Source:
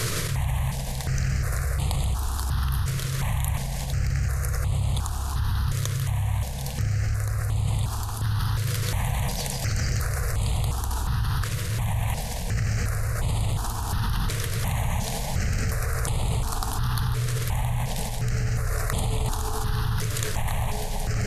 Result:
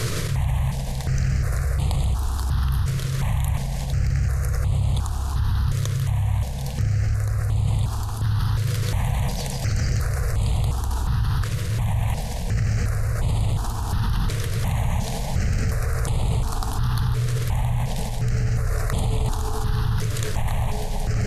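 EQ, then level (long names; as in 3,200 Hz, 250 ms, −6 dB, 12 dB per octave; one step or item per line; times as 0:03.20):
parametric band 1,600 Hz −4 dB 2.6 octaves
high-shelf EQ 6,300 Hz −9 dB
+3.5 dB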